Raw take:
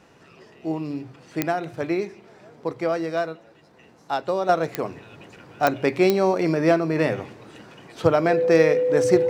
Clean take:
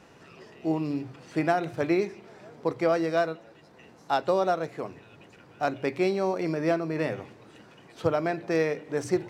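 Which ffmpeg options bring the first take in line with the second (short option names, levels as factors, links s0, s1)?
-af "adeclick=t=4,bandreject=f=500:w=30,asetnsamples=n=441:p=0,asendcmd='4.49 volume volume -7dB',volume=1"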